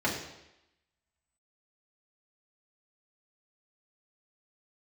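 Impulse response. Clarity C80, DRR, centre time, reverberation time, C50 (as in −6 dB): 8.0 dB, −5.5 dB, 36 ms, 0.90 s, 5.0 dB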